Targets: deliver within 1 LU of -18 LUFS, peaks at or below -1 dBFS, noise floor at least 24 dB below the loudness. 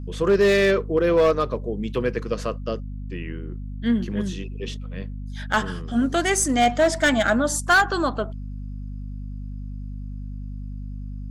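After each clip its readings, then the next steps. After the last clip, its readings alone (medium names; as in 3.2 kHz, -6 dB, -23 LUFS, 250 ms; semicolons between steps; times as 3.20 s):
clipped samples 0.8%; clipping level -12.0 dBFS; hum 50 Hz; highest harmonic 250 Hz; hum level -30 dBFS; loudness -22.0 LUFS; peak level -12.0 dBFS; loudness target -18.0 LUFS
-> clip repair -12 dBFS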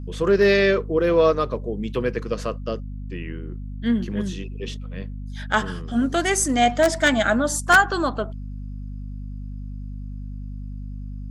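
clipped samples 0.0%; hum 50 Hz; highest harmonic 250 Hz; hum level -30 dBFS
-> de-hum 50 Hz, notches 5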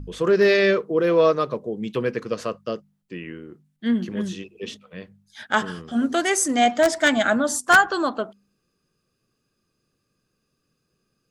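hum not found; loudness -21.0 LUFS; peak level -2.5 dBFS; loudness target -18.0 LUFS
-> trim +3 dB; peak limiter -1 dBFS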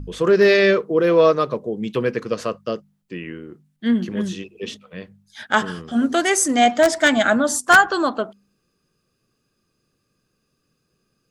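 loudness -18.5 LUFS; peak level -1.0 dBFS; noise floor -72 dBFS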